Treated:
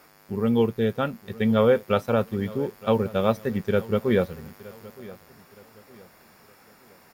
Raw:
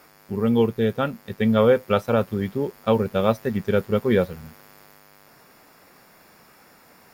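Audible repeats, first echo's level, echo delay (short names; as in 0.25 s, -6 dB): 2, -20.0 dB, 0.917 s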